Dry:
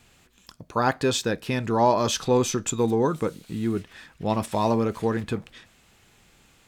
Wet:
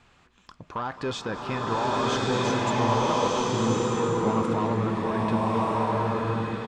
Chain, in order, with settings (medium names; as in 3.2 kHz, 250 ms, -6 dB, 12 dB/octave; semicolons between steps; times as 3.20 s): peaking EQ 1.1 kHz +8 dB 1 oct; in parallel at -2.5 dB: compression, threshold -30 dBFS, peak gain reduction 18 dB; on the sum: peak limiter -11.5 dBFS, peak gain reduction 8.5 dB; saturation -15.5 dBFS, distortion -17 dB; distance through air 100 m; delay 216 ms -17.5 dB; swelling reverb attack 1260 ms, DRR -6 dB; trim -6.5 dB